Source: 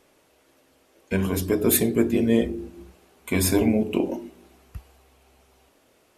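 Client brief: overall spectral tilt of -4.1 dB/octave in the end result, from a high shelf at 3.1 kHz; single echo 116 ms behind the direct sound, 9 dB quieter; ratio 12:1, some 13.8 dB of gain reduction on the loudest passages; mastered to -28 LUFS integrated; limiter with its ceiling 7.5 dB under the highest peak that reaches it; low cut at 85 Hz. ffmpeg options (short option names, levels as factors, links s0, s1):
-af "highpass=85,highshelf=f=3100:g=9,acompressor=threshold=0.0794:ratio=12,alimiter=limit=0.112:level=0:latency=1,aecho=1:1:116:0.355,volume=1.26"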